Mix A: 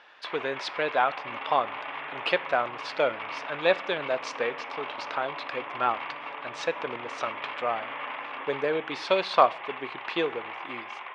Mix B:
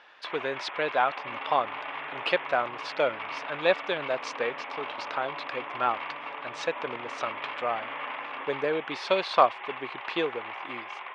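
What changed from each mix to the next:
speech: send off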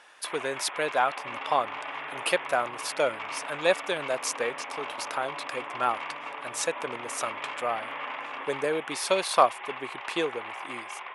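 master: remove low-pass 4.3 kHz 24 dB/octave

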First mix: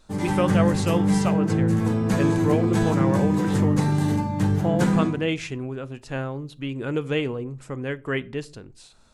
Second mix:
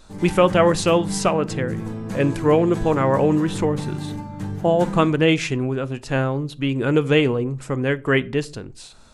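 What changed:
speech +8.0 dB; background -7.5 dB

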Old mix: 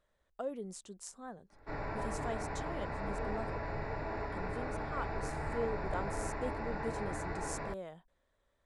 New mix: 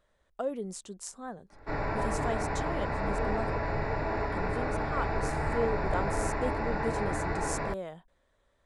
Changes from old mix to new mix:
speech +6.0 dB; background +7.5 dB

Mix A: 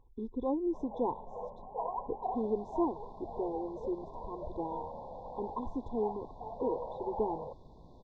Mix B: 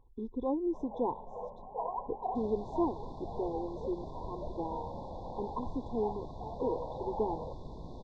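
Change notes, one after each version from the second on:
second sound +10.5 dB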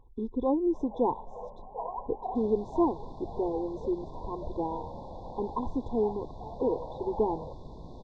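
speech +5.5 dB

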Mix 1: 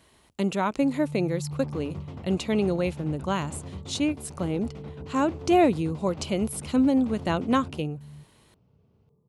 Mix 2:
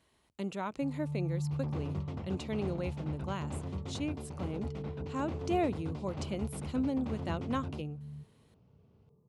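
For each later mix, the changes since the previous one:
speech -11.0 dB; master: add treble shelf 11 kHz -5.5 dB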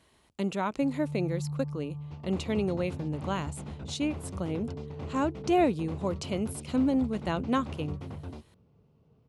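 speech +6.5 dB; second sound: entry +0.60 s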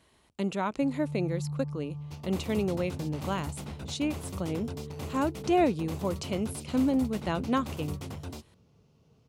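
second sound: remove tape spacing loss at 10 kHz 27 dB

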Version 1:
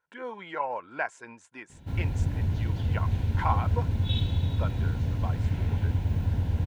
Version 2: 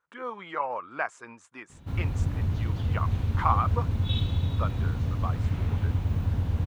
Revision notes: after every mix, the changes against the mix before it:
master: remove Butterworth band-stop 1.2 kHz, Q 4.7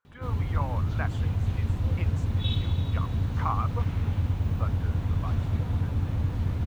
speech -5.5 dB; background: entry -1.65 s

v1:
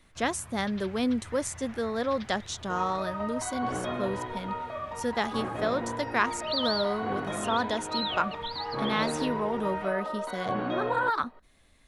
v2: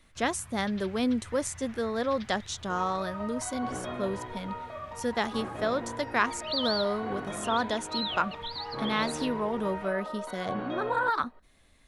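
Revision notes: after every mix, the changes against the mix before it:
first sound: add peaking EQ 470 Hz -8 dB 2.2 oct; second sound -4.0 dB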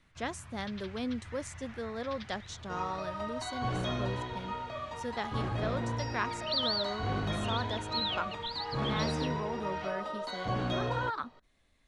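speech -8.0 dB; second sound: remove band-pass 240–2100 Hz; master: add low-pass 8 kHz 12 dB/octave

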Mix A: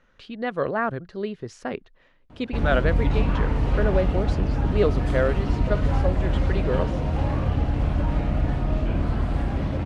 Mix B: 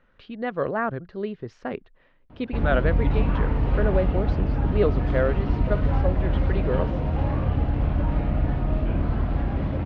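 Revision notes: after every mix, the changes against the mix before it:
master: add distance through air 220 m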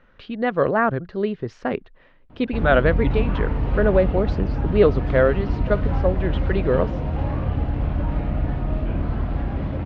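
speech +6.5 dB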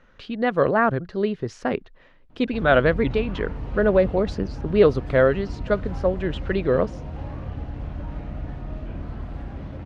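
background -9.0 dB; master: remove low-pass 3.8 kHz 12 dB/octave

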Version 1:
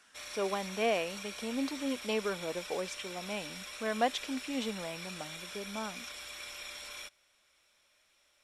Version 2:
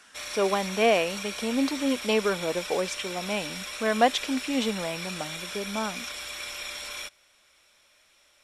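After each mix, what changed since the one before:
speech +8.5 dB; background +8.0 dB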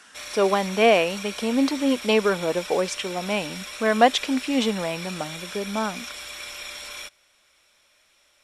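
speech +4.5 dB

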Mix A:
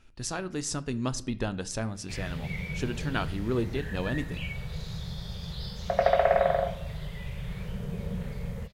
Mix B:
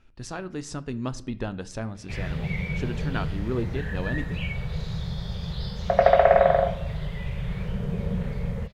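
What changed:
background +6.0 dB; master: add low-pass 2.8 kHz 6 dB/octave

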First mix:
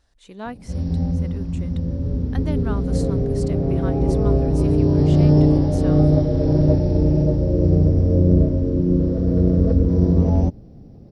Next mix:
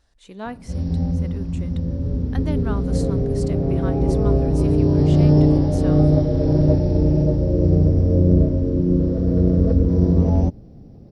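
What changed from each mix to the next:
reverb: on, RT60 0.55 s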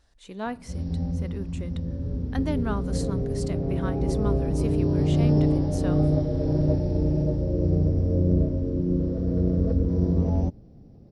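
background -6.5 dB

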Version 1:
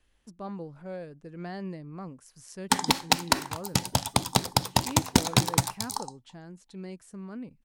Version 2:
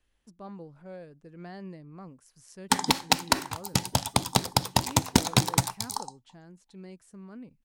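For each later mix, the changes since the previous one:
speech -5.0 dB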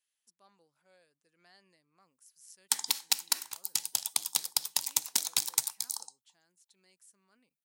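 master: add differentiator

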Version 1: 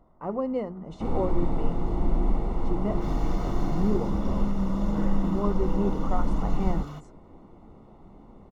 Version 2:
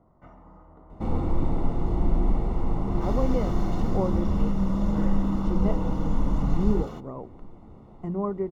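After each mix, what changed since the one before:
speech: entry +2.80 s; master: add peaking EQ 87 Hz +5.5 dB 1.7 oct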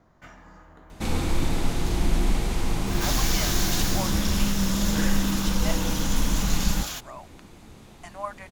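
speech: add brick-wall FIR high-pass 560 Hz; master: remove Savitzky-Golay filter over 65 samples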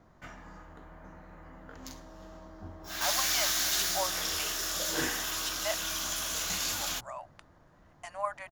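second sound: muted

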